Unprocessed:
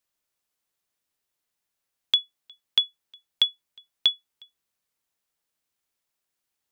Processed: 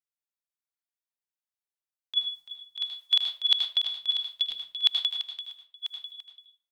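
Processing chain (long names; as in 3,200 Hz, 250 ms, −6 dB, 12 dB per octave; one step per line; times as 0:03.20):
feedback delay that plays each chunk backwards 496 ms, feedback 50%, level −9 dB
high-pass filter 650 Hz 24 dB per octave
noise gate −51 dBFS, range −26 dB
dynamic equaliser 4,300 Hz, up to +7 dB, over −42 dBFS, Q 4
compressor whose output falls as the input rises −25 dBFS, ratio −0.5
single-tap delay 339 ms −11.5 dB
on a send at −3 dB: convolution reverb RT60 0.40 s, pre-delay 77 ms
on the sum: level +3 dB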